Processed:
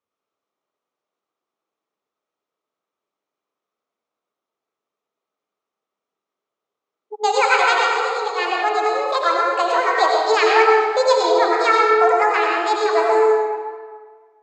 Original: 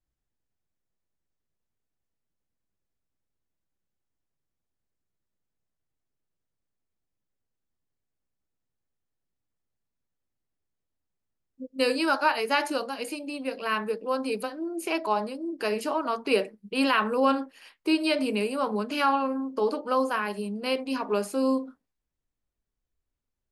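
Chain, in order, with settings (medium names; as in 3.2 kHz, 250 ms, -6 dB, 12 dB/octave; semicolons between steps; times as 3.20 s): wide varispeed 1.63×; cabinet simulation 410–6100 Hz, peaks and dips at 420 Hz +4 dB, 1.2 kHz +8 dB, 1.7 kHz -5 dB, 2.8 kHz -4 dB, 4.7 kHz -7 dB; reverberation RT60 1.6 s, pre-delay 54 ms, DRR -2 dB; wow and flutter 19 cents; trim +6 dB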